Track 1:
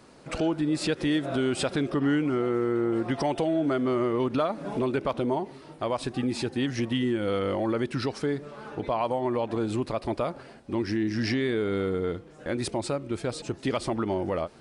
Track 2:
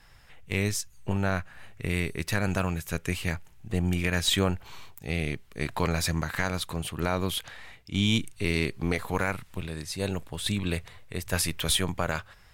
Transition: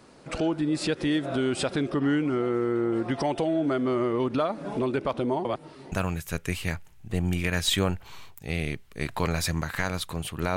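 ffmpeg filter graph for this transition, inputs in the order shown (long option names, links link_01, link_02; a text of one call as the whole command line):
ffmpeg -i cue0.wav -i cue1.wav -filter_complex "[0:a]apad=whole_dur=10.56,atrim=end=10.56,asplit=2[link_01][link_02];[link_01]atrim=end=5.452[link_03];[link_02]atrim=start=5.448:end=5.922,asetpts=PTS-STARTPTS,areverse[link_04];[1:a]atrim=start=2.518:end=7.16[link_05];[link_03][link_04]acrossfade=duration=0.004:curve1=hsin:curve2=hsin[link_06];[link_06][link_05]acrossfade=duration=0.004:curve1=hsin:curve2=hsin" out.wav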